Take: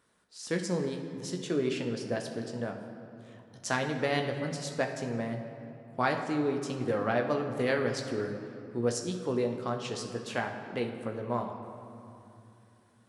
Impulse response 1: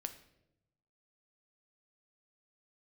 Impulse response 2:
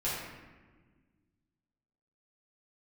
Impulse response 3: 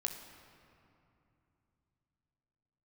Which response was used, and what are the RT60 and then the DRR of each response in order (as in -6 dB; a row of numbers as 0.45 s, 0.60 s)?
3; 0.85 s, 1.4 s, 2.8 s; 7.5 dB, -9.5 dB, 3.0 dB